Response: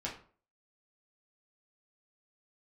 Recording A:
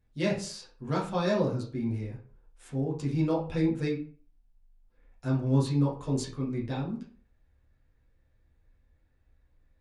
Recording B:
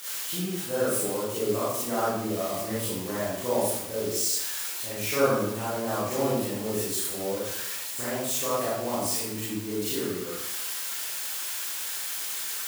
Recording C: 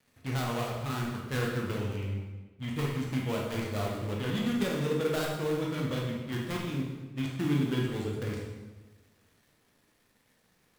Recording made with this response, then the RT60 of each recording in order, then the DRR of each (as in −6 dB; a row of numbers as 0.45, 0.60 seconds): A; 0.45, 0.80, 1.2 seconds; −4.5, −10.5, −2.5 decibels